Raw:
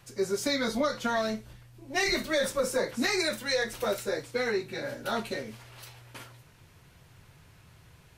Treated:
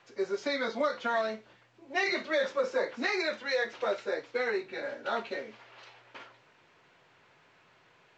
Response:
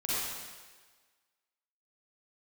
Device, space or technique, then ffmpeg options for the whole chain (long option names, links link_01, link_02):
telephone: -af "highpass=370,lowpass=3100" -ar 16000 -c:a pcm_mulaw